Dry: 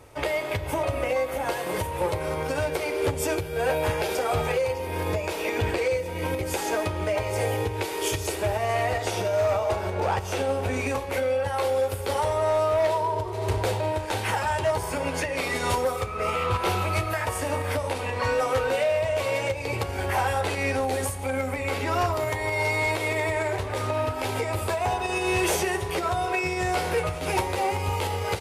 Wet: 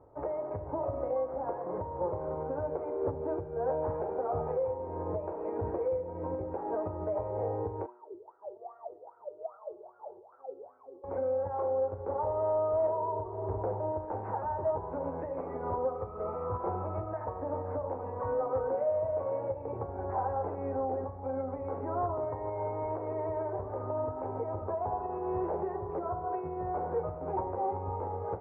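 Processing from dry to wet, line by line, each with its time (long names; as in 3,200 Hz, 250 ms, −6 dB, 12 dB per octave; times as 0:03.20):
0:07.86–0:11.04: LFO wah 2.5 Hz 350–1,400 Hz, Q 17
whole clip: inverse Chebyshev low-pass filter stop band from 3,400 Hz, stop band 60 dB; low-shelf EQ 160 Hz −7 dB; hum removal 121.1 Hz, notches 31; level −5 dB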